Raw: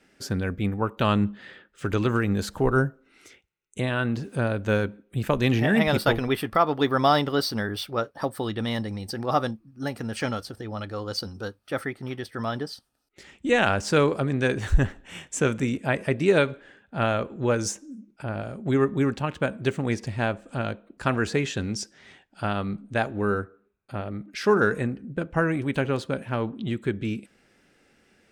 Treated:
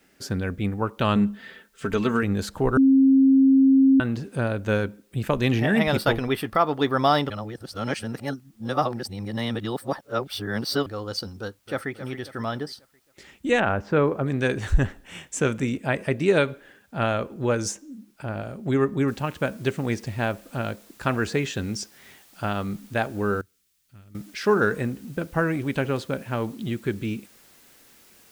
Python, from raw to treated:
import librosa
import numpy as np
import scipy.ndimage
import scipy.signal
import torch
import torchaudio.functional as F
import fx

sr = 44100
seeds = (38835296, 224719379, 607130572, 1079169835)

y = fx.comb(x, sr, ms=4.5, depth=0.6, at=(1.15, 2.23))
y = fx.echo_throw(y, sr, start_s=11.39, length_s=0.52, ms=270, feedback_pct=45, wet_db=-11.5)
y = fx.lowpass(y, sr, hz=1700.0, slope=12, at=(13.6, 14.26))
y = fx.noise_floor_step(y, sr, seeds[0], at_s=19.08, before_db=-69, after_db=-55, tilt_db=0.0)
y = fx.tone_stack(y, sr, knobs='6-0-2', at=(23.41, 24.15))
y = fx.edit(y, sr, fx.bleep(start_s=2.77, length_s=1.23, hz=268.0, db=-12.5),
    fx.reverse_span(start_s=7.3, length_s=3.56), tone=tone)